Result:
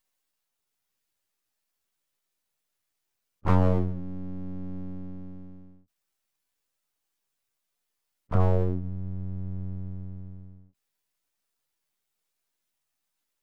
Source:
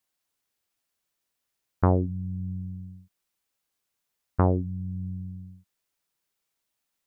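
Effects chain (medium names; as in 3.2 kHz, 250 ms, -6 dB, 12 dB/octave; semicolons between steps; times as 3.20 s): plain phase-vocoder stretch 1.9×; spectral gate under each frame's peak -20 dB strong; half-wave rectifier; trim +6 dB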